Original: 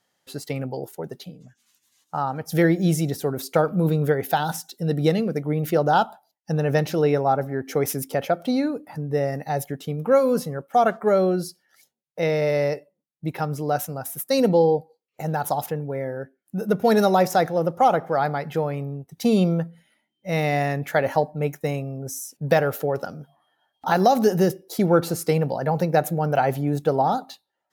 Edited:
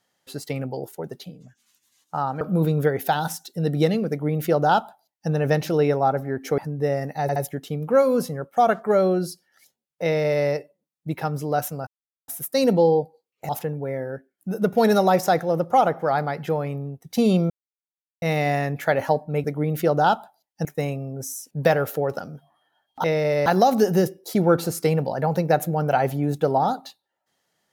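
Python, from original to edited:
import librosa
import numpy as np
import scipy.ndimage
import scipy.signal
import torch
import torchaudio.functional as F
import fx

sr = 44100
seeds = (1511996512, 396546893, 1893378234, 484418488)

y = fx.edit(x, sr, fx.cut(start_s=2.41, length_s=1.24),
    fx.duplicate(start_s=5.33, length_s=1.21, to_s=21.51),
    fx.cut(start_s=7.82, length_s=1.07),
    fx.stutter(start_s=9.53, slice_s=0.07, count=3),
    fx.duplicate(start_s=12.21, length_s=0.42, to_s=23.9),
    fx.insert_silence(at_s=14.04, length_s=0.41),
    fx.cut(start_s=15.25, length_s=0.31),
    fx.silence(start_s=19.57, length_s=0.72), tone=tone)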